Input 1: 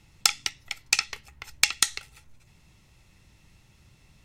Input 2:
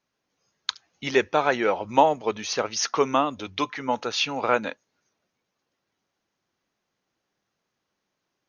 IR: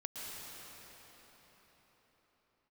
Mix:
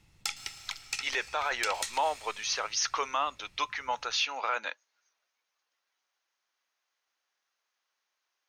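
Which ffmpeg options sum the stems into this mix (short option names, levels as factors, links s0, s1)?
-filter_complex "[0:a]volume=0.447,asplit=2[s0][s1];[s1]volume=0.266[s2];[1:a]highpass=990,volume=0.944[s3];[2:a]atrim=start_sample=2205[s4];[s2][s4]afir=irnorm=-1:irlink=0[s5];[s0][s3][s5]amix=inputs=3:normalize=0,asoftclip=type=tanh:threshold=0.422,alimiter=limit=0.106:level=0:latency=1:release=11"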